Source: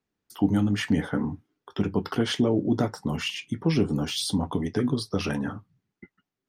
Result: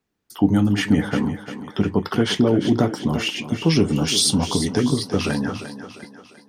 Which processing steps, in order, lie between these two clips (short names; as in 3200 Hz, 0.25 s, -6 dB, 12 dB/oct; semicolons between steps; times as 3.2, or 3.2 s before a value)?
3.59–4.83 bell 7300 Hz +9 dB 1.6 oct; on a send: thinning echo 0.349 s, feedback 48%, high-pass 200 Hz, level -10 dB; on the sum: gain +5.5 dB